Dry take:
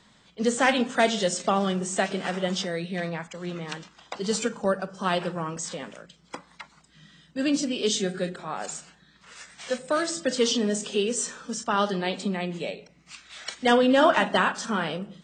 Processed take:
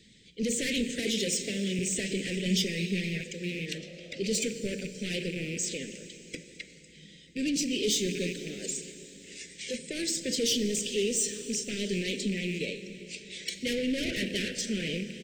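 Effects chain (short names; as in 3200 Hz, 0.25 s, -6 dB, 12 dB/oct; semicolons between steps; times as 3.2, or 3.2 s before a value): rattling part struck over -38 dBFS, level -29 dBFS; soft clip -24 dBFS, distortion -7 dB; 0.99–1.79 HPF 130 Hz; plate-style reverb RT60 4.2 s, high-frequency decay 0.9×, DRR 9 dB; 3.74–4.44 painted sound noise 490–1300 Hz -35 dBFS; elliptic band-stop 460–2100 Hz, stop band 60 dB; 2.45–3.21 comb 4.9 ms, depth 69%; speakerphone echo 0.38 s, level -27 dB; harmonic-percussive split percussive +4 dB; 3.78–4.35 high shelf 7600 Hz -8 dB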